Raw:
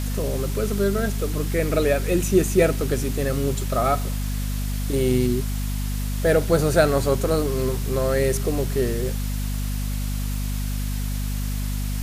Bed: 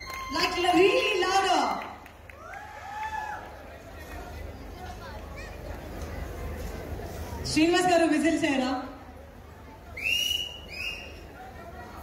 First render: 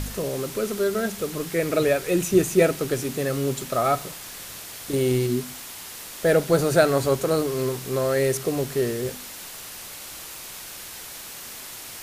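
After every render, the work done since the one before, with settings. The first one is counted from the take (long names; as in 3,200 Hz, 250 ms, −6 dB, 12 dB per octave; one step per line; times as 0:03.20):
hum removal 50 Hz, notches 5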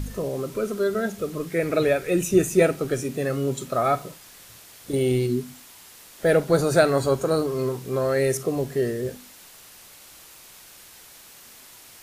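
noise reduction from a noise print 9 dB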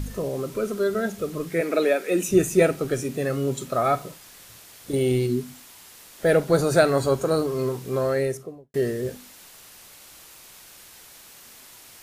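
0:01.61–0:02.29: Butterworth high-pass 190 Hz 48 dB per octave
0:08.00–0:08.74: fade out and dull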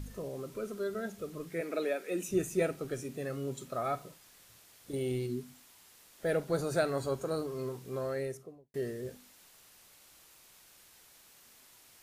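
level −12 dB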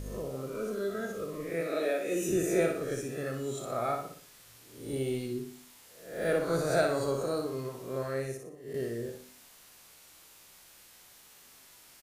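peak hold with a rise ahead of every peak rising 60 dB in 0.59 s
on a send: repeating echo 60 ms, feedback 41%, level −5.5 dB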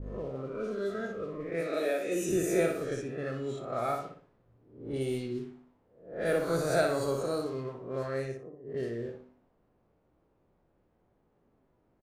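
low-pass that shuts in the quiet parts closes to 400 Hz, open at −27 dBFS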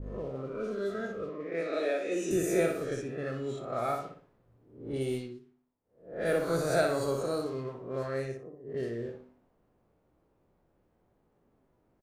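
0:01.29–0:02.31: three-way crossover with the lows and the highs turned down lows −21 dB, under 170 Hz, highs −22 dB, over 7,500 Hz
0:05.14–0:06.09: duck −17.5 dB, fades 0.26 s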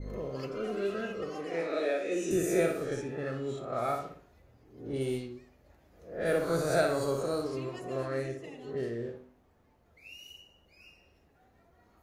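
mix in bed −23 dB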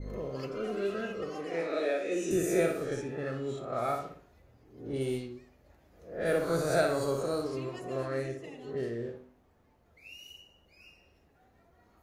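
no processing that can be heard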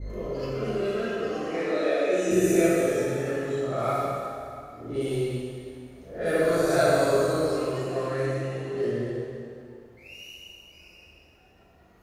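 dense smooth reverb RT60 2.4 s, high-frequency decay 0.9×, DRR −5.5 dB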